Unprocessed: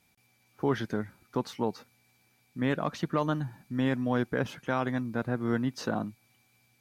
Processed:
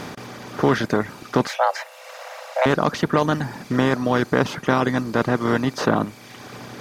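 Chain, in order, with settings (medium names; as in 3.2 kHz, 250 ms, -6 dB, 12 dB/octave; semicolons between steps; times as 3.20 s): spectral levelling over time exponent 0.4; reverb removal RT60 1.1 s; 1.47–2.66 s: frequency shift +390 Hz; trim +7 dB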